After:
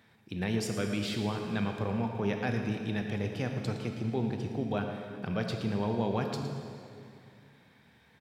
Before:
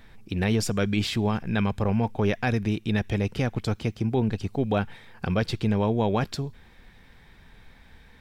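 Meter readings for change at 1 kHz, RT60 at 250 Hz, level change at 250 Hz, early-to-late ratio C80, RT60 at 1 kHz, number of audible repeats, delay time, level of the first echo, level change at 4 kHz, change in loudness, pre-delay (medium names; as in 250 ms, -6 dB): -6.0 dB, 2.7 s, -6.0 dB, 5.0 dB, 2.4 s, 1, 113 ms, -12.5 dB, -6.5 dB, -6.5 dB, 20 ms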